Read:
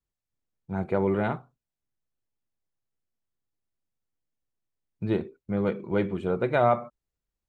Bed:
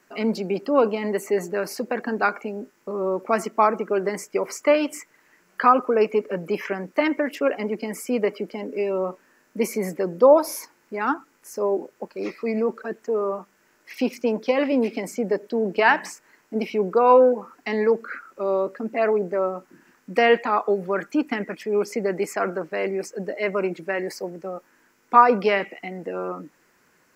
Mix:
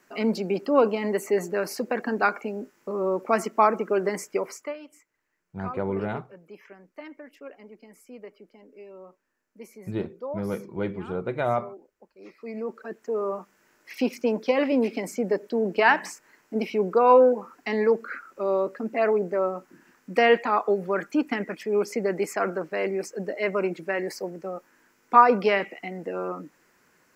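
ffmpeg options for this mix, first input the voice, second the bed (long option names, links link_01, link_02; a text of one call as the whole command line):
ffmpeg -i stem1.wav -i stem2.wav -filter_complex "[0:a]adelay=4850,volume=-3.5dB[link_01];[1:a]volume=18dB,afade=type=out:start_time=4.29:duration=0.45:silence=0.105925,afade=type=in:start_time=12.17:duration=1.35:silence=0.112202[link_02];[link_01][link_02]amix=inputs=2:normalize=0" out.wav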